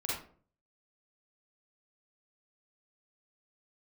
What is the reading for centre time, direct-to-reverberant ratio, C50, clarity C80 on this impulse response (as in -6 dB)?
56 ms, -6.5 dB, -1.0 dB, 6.0 dB